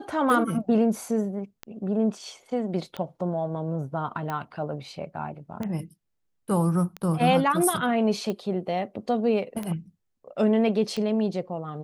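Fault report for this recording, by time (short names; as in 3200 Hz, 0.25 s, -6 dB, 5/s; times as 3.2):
tick 45 rpm -18 dBFS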